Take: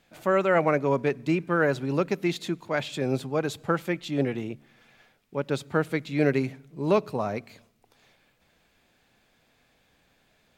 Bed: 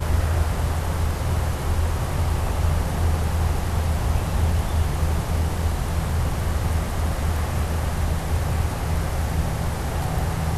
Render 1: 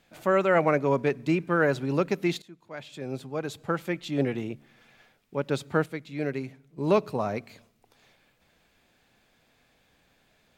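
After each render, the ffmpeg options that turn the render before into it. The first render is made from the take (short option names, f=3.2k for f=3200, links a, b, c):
-filter_complex "[0:a]asplit=4[a][b][c][d];[a]atrim=end=2.42,asetpts=PTS-STARTPTS,afade=t=out:st=2.416:d=0.004:c=hsin:silence=0.0707946[e];[b]atrim=start=2.42:end=5.862,asetpts=PTS-STARTPTS,afade=t=in:d=1.86:silence=0.0707946[f];[c]atrim=start=5.858:end=6.782,asetpts=PTS-STARTPTS,volume=-7.5dB[g];[d]atrim=start=6.778[h];[e][f]concat=n=2:v=0:a=1[i];[i][g]acrossfade=d=0.004:c1=hsin:c2=hsin[j];[j][h]acrossfade=d=0.004:c1=hsin:c2=hsin"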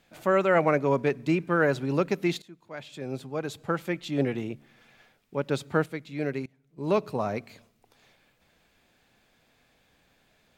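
-filter_complex "[0:a]asplit=2[a][b];[a]atrim=end=6.46,asetpts=PTS-STARTPTS,afade=t=out:st=6.456:d=0.004:c=hsin:silence=0.0794328[c];[b]atrim=start=6.46,asetpts=PTS-STARTPTS,afade=t=in:d=0.9:c=qsin:silence=0.0794328[d];[c][d]concat=n=2:v=0:a=1"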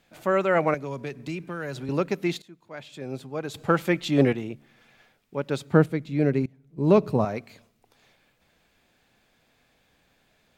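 -filter_complex "[0:a]asettb=1/sr,asplit=3[a][b][c];[a]atrim=end=0.744[d];[b]atrim=start=0.74:end=1.89,asetpts=PTS-STARTPTS,afade=t=in:d=0.004:c=qsin,afade=t=out:st=1.146:d=0.004:c=qsin,acrossover=split=120|3000[e][f][g];[f]acompressor=threshold=-32dB:ratio=4:attack=3.2:release=140:knee=2.83:detection=peak[h];[e][h][g]amix=inputs=3:normalize=0[i];[c]atrim=start=1.886[j];[d][i]acrossfade=d=0.004:c1=hsin:c2=qsin[k];[k][j]acrossfade=d=0.004:c1=qsin:c2=hsin,asettb=1/sr,asplit=3[l][m][n];[l]atrim=end=3.544[o];[m]atrim=start=3.54:end=4.33,asetpts=PTS-STARTPTS,afade=t=in:d=0.004:c=qsin,afade=t=out:st=0.786:d=0.004:c=qsin,acontrast=76[p];[n]atrim=start=4.326[q];[o][p]acrossfade=d=0.004:c1=hsin:c2=qsin[r];[r][q]acrossfade=d=0.004:c1=qsin:c2=hsin,asettb=1/sr,asplit=3[s][t][u];[s]atrim=end=5.734[v];[t]atrim=start=5.73:end=7.25,asetpts=PTS-STARTPTS,afade=t=in:d=0.004:c=qsin,afade=t=out:st=1.516:d=0.004:c=qsin,lowshelf=f=490:g=11.5[w];[u]atrim=start=7.246[x];[v][w]acrossfade=d=0.004:c1=hsin:c2=qsin[y];[y][x]acrossfade=d=0.004:c1=qsin:c2=hsin"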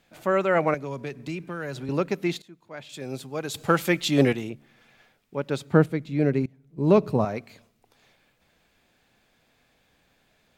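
-filter_complex "[0:a]asettb=1/sr,asplit=3[a][b][c];[a]atrim=end=2.894[d];[b]atrim=start=2.89:end=4.5,asetpts=PTS-STARTPTS,afade=t=in:d=0.004:c=qsin,afade=t=out:st=1.606:d=0.004:c=qsin,highshelf=f=3.3k:g=10[e];[c]atrim=start=4.496[f];[d][e]acrossfade=d=0.004:c1=hsin:c2=qsin[g];[g][f]acrossfade=d=0.004:c1=qsin:c2=hsin"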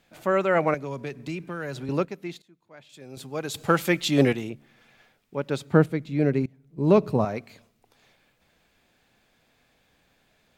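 -filter_complex "[0:a]asplit=3[a][b][c];[a]atrim=end=2.052[d];[b]atrim=start=2.048:end=3.172,asetpts=PTS-STARTPTS,volume=-9dB[e];[c]atrim=start=3.168[f];[d][e]acrossfade=d=0.004:c1=hsin:c2=hsin[g];[g][f]acrossfade=d=0.004:c1=hsin:c2=hsin"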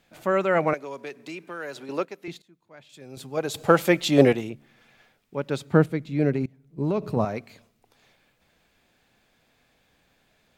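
-filter_complex "[0:a]asettb=1/sr,asplit=3[a][b][c];[a]atrim=end=0.734[d];[b]atrim=start=0.73:end=2.28,asetpts=PTS-STARTPTS,afade=t=in:d=0.004:c=qsin,afade=t=out:st=1.546:d=0.004:c=qsin,highpass=360[e];[c]atrim=start=2.276[f];[d][e]acrossfade=d=0.004:c1=hsin:c2=qsin[g];[g][f]acrossfade=d=0.004:c1=qsin:c2=hsin,asettb=1/sr,asplit=3[h][i][j];[h]atrim=end=3.374[k];[i]atrim=start=3.37:end=4.41,asetpts=PTS-STARTPTS,afade=t=in:d=0.004:c=qsin,afade=t=out:st=1.036:d=0.004:c=qsin,equalizer=f=600:t=o:w=1.4:g=7[l];[j]atrim=start=4.406[m];[k][l]acrossfade=d=0.004:c1=hsin:c2=qsin[n];[n][m]acrossfade=d=0.004:c1=qsin:c2=hsin,asettb=1/sr,asplit=3[o][p][q];[o]atrim=end=6.344[r];[p]atrim=start=6.34:end=7.17,asetpts=PTS-STARTPTS,afade=t=in:d=0.004:c=qsin,afade=t=out:st=0.826:d=0.004:c=qsin,acompressor=threshold=-20dB:ratio=10:attack=3.2:release=140:knee=1:detection=peak[s];[q]atrim=start=7.166[t];[r][s]acrossfade=d=0.004:c1=hsin:c2=qsin[u];[u][t]acrossfade=d=0.004:c1=qsin:c2=hsin"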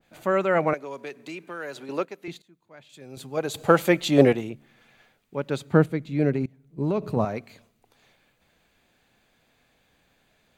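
-af "bandreject=f=5.3k:w=11,adynamicequalizer=threshold=0.0178:dfrequency=1900:dqfactor=0.7:tfrequency=1900:tqfactor=0.7:attack=5:release=100:ratio=0.375:range=1.5:mode=cutabove:tftype=highshelf"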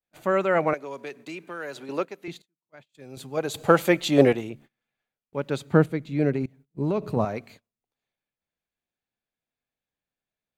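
-af "adynamicequalizer=threshold=0.0224:dfrequency=170:dqfactor=1.2:tfrequency=170:tqfactor=1.2:attack=5:release=100:ratio=0.375:range=2:mode=cutabove:tftype=bell,agate=range=-27dB:threshold=-48dB:ratio=16:detection=peak"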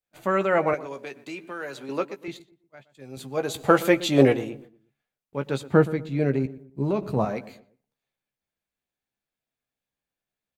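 -filter_complex "[0:a]asplit=2[a][b];[b]adelay=15,volume=-8.5dB[c];[a][c]amix=inputs=2:normalize=0,asplit=2[d][e];[e]adelay=120,lowpass=f=1.2k:p=1,volume=-16dB,asplit=2[f][g];[g]adelay=120,lowpass=f=1.2k:p=1,volume=0.39,asplit=2[h][i];[i]adelay=120,lowpass=f=1.2k:p=1,volume=0.39[j];[d][f][h][j]amix=inputs=4:normalize=0"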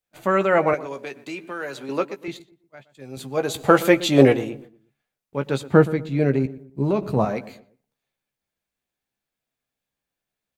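-af "volume=3.5dB,alimiter=limit=-1dB:level=0:latency=1"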